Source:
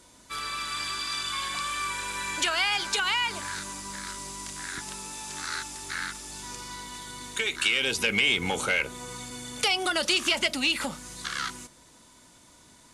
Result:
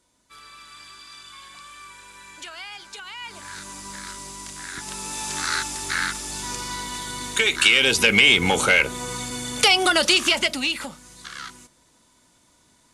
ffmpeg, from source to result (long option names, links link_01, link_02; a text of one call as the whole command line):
ffmpeg -i in.wav -af "volume=8.5dB,afade=type=in:start_time=3.14:duration=0.71:silence=0.223872,afade=type=in:start_time=4.74:duration=0.49:silence=0.421697,afade=type=out:start_time=9.87:duration=1.08:silence=0.223872" out.wav